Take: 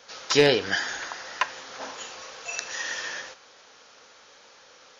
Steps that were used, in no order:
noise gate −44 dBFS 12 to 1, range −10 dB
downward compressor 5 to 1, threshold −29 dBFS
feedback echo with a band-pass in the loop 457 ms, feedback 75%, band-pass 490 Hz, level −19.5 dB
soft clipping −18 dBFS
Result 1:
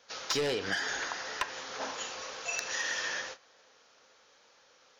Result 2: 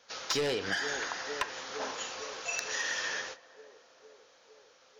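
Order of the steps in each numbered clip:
soft clipping, then downward compressor, then feedback echo with a band-pass in the loop, then noise gate
noise gate, then feedback echo with a band-pass in the loop, then soft clipping, then downward compressor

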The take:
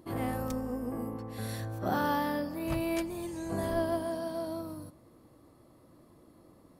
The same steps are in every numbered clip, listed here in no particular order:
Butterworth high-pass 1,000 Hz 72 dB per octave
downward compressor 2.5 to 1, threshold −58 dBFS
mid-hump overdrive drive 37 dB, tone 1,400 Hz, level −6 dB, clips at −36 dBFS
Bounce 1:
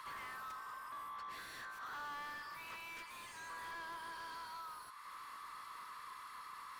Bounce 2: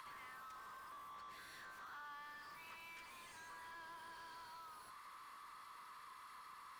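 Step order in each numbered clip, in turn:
downward compressor, then Butterworth high-pass, then mid-hump overdrive
Butterworth high-pass, then mid-hump overdrive, then downward compressor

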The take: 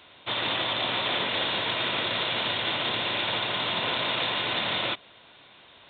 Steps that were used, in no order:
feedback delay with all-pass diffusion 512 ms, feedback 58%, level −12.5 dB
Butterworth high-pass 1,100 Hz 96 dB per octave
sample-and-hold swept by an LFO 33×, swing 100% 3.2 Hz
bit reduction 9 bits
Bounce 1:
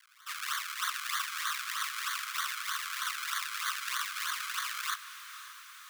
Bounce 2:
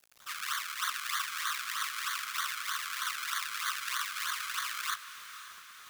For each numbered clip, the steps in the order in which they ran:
sample-and-hold swept by an LFO, then feedback delay with all-pass diffusion, then bit reduction, then Butterworth high-pass
sample-and-hold swept by an LFO, then Butterworth high-pass, then bit reduction, then feedback delay with all-pass diffusion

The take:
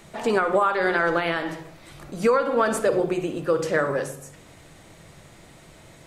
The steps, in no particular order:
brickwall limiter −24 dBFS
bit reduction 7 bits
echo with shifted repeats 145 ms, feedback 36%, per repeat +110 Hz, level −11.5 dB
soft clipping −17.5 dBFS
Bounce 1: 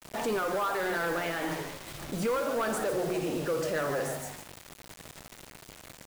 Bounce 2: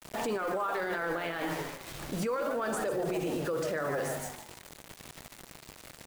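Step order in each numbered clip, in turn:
soft clipping, then echo with shifted repeats, then brickwall limiter, then bit reduction
bit reduction, then echo with shifted repeats, then brickwall limiter, then soft clipping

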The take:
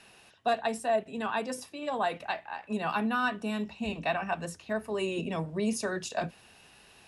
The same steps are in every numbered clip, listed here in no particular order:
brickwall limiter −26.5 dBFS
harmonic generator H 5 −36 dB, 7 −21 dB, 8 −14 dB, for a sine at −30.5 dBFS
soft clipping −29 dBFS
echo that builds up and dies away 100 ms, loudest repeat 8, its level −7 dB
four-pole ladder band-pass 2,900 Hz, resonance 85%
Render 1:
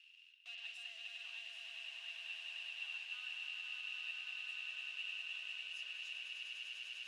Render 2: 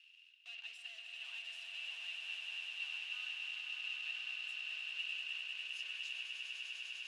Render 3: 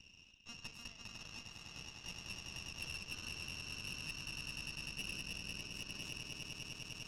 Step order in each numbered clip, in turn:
echo that builds up and dies away, then brickwall limiter, then harmonic generator, then soft clipping, then four-pole ladder band-pass
brickwall limiter, then harmonic generator, then echo that builds up and dies away, then soft clipping, then four-pole ladder band-pass
echo that builds up and dies away, then brickwall limiter, then soft clipping, then four-pole ladder band-pass, then harmonic generator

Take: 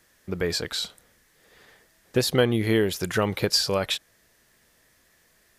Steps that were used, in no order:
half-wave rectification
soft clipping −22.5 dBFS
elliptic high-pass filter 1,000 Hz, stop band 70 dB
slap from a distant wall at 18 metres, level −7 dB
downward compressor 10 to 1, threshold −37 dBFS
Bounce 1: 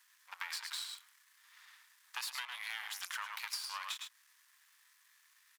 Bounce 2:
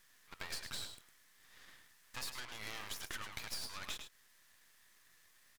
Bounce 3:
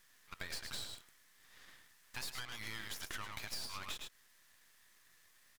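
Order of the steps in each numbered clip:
slap from a distant wall, then half-wave rectification, then elliptic high-pass filter, then downward compressor, then soft clipping
soft clipping, then elliptic high-pass filter, then downward compressor, then slap from a distant wall, then half-wave rectification
elliptic high-pass filter, then soft clipping, then slap from a distant wall, then downward compressor, then half-wave rectification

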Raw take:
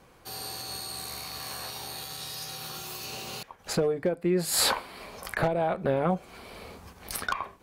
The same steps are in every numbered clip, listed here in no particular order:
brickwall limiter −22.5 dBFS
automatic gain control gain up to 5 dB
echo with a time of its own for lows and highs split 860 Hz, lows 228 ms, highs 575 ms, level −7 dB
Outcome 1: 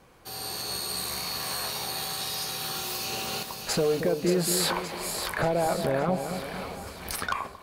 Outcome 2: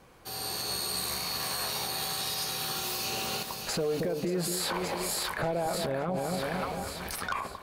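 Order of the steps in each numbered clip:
brickwall limiter, then echo with a time of its own for lows and highs, then automatic gain control
echo with a time of its own for lows and highs, then automatic gain control, then brickwall limiter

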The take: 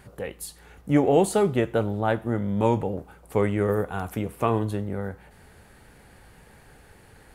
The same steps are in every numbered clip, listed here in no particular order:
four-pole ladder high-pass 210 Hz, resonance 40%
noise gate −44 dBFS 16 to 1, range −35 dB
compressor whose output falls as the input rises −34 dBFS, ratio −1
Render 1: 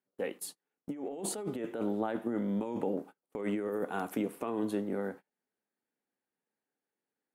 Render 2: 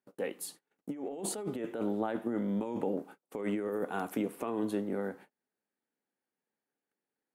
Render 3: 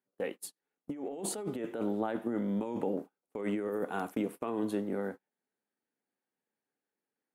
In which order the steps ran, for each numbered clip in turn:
four-pole ladder high-pass, then compressor whose output falls as the input rises, then noise gate
noise gate, then four-pole ladder high-pass, then compressor whose output falls as the input rises
four-pole ladder high-pass, then noise gate, then compressor whose output falls as the input rises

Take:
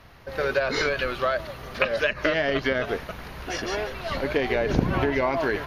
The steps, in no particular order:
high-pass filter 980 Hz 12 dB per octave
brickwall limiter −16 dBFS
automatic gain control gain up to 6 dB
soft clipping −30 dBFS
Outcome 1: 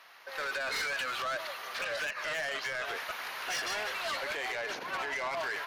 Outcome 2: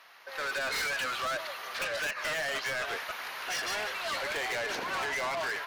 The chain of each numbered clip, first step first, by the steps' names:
automatic gain control, then brickwall limiter, then high-pass filter, then soft clipping
high-pass filter, then automatic gain control, then soft clipping, then brickwall limiter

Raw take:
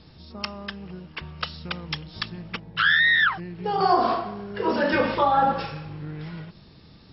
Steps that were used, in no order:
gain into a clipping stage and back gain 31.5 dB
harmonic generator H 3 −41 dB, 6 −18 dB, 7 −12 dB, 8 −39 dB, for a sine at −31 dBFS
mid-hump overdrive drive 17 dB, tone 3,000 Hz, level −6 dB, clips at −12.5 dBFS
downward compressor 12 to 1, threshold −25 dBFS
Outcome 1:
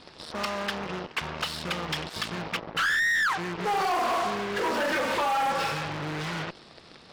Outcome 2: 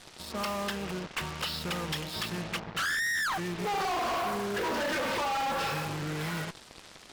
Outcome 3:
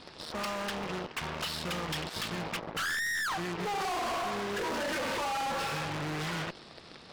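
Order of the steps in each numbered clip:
downward compressor, then harmonic generator, then gain into a clipping stage and back, then mid-hump overdrive
downward compressor, then gain into a clipping stage and back, then mid-hump overdrive, then harmonic generator
harmonic generator, then mid-hump overdrive, then downward compressor, then gain into a clipping stage and back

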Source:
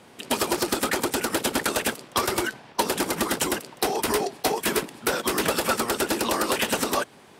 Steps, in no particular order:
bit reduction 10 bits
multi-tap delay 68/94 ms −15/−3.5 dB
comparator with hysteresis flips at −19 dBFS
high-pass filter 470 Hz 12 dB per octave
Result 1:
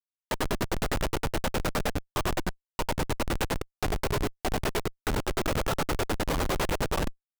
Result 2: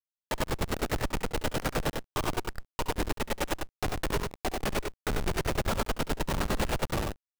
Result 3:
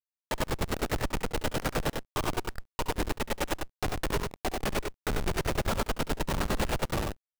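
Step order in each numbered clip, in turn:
high-pass filter, then bit reduction, then multi-tap delay, then comparator with hysteresis
high-pass filter, then comparator with hysteresis, then multi-tap delay, then bit reduction
high-pass filter, then comparator with hysteresis, then bit reduction, then multi-tap delay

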